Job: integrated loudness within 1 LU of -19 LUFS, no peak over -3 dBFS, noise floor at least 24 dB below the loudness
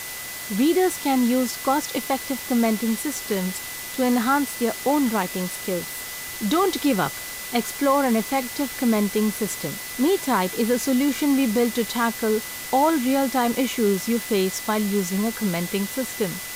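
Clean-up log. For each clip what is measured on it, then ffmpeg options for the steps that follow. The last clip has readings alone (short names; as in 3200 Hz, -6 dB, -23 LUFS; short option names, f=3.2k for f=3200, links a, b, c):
steady tone 2000 Hz; tone level -38 dBFS; noise floor -34 dBFS; noise floor target -47 dBFS; loudness -23.0 LUFS; peak -9.0 dBFS; loudness target -19.0 LUFS
-> -af "bandreject=f=2k:w=30"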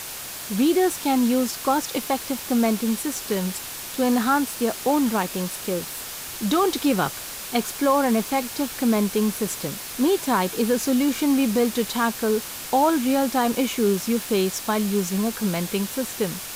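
steady tone none; noise floor -35 dBFS; noise floor target -47 dBFS
-> -af "afftdn=nr=12:nf=-35"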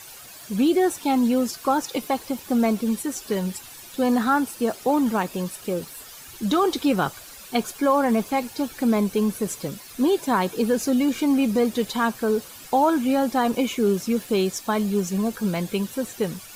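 noise floor -43 dBFS; noise floor target -48 dBFS
-> -af "afftdn=nr=6:nf=-43"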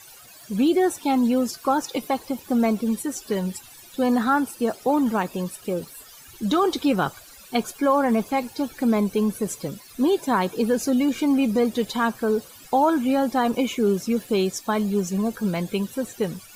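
noise floor -47 dBFS; noise floor target -48 dBFS
-> -af "afftdn=nr=6:nf=-47"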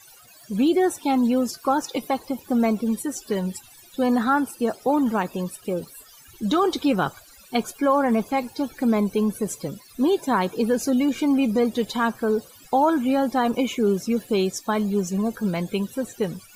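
noise floor -50 dBFS; loudness -23.5 LUFS; peak -9.5 dBFS; loudness target -19.0 LUFS
-> -af "volume=4.5dB"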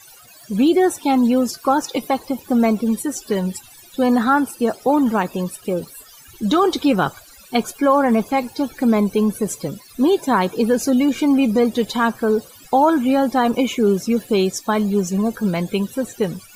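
loudness -19.0 LUFS; peak -5.0 dBFS; noise floor -45 dBFS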